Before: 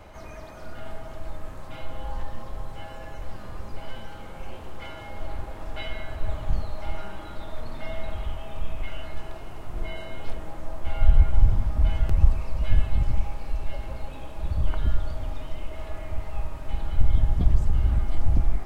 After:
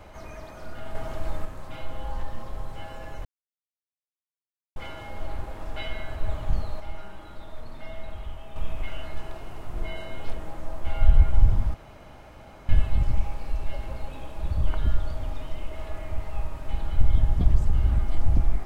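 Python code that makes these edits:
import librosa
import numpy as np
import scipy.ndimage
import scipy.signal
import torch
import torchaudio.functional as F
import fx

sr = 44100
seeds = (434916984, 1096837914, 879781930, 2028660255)

y = fx.edit(x, sr, fx.clip_gain(start_s=0.95, length_s=0.5, db=5.0),
    fx.silence(start_s=3.25, length_s=1.51),
    fx.clip_gain(start_s=6.8, length_s=1.76, db=-5.5),
    fx.room_tone_fill(start_s=11.74, length_s=0.95), tone=tone)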